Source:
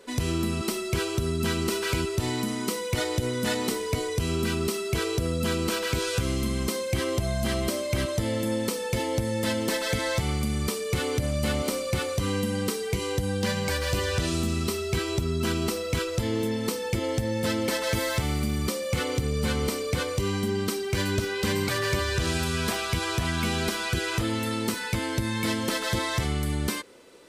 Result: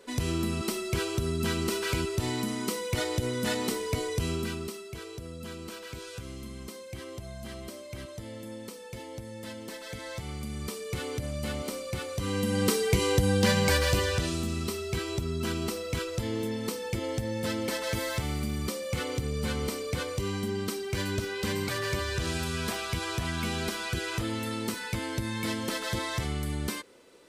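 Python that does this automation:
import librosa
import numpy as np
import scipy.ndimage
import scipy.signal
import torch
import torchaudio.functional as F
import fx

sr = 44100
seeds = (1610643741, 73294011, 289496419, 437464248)

y = fx.gain(x, sr, db=fx.line((4.25, -2.5), (4.93, -14.0), (9.77, -14.0), (10.82, -7.0), (12.09, -7.0), (12.72, 3.5), (13.76, 3.5), (14.37, -4.5)))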